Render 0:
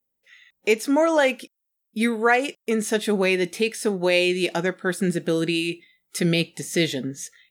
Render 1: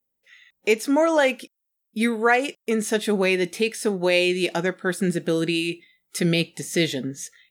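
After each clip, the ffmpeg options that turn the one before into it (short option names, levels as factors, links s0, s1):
-af anull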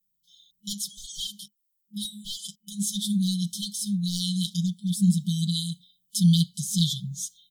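-af "asoftclip=type=hard:threshold=0.224,afftfilt=real='re*(1-between(b*sr/4096,210,3000))':imag='im*(1-between(b*sr/4096,210,3000))':win_size=4096:overlap=0.75,aecho=1:1:5.8:0.86"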